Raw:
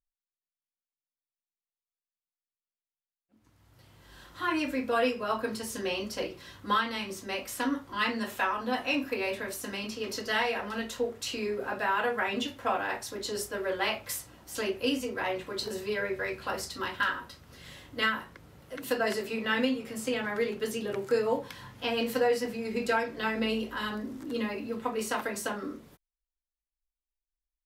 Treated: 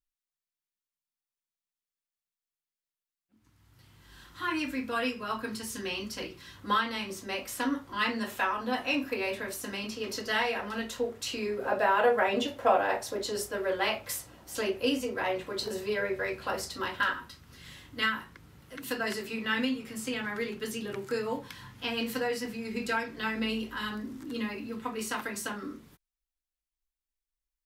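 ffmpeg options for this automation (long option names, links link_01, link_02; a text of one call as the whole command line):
ffmpeg -i in.wav -af "asetnsamples=nb_out_samples=441:pad=0,asendcmd='6.57 equalizer g -1;11.65 equalizer g 9.5;13.24 equalizer g 2;17.13 equalizer g -8.5',equalizer=frequency=580:width_type=o:width=1:gain=-9.5" out.wav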